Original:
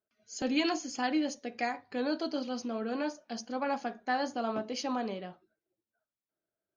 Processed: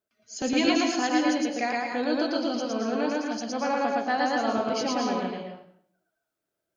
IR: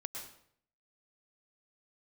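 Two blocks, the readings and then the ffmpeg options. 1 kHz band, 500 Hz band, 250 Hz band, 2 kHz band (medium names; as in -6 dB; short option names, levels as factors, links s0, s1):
+7.5 dB, +7.5 dB, +7.0 dB, +7.5 dB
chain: -filter_complex "[0:a]asplit=2[s0][s1];[1:a]atrim=start_sample=2205,adelay=113[s2];[s1][s2]afir=irnorm=-1:irlink=0,volume=1.41[s3];[s0][s3]amix=inputs=2:normalize=0,volume=1.5"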